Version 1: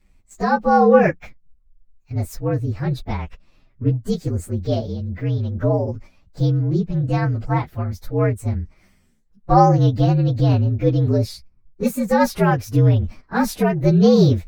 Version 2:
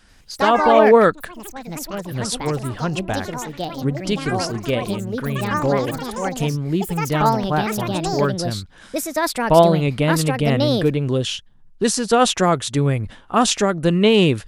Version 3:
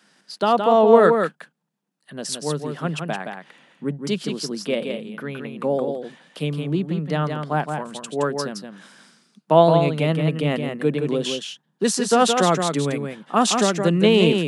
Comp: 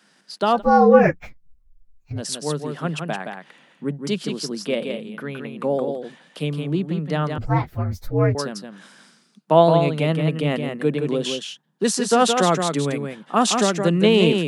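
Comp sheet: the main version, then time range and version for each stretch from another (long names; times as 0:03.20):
3
0:00.58–0:02.17: punch in from 1, crossfade 0.10 s
0:07.38–0:08.35: punch in from 1
not used: 2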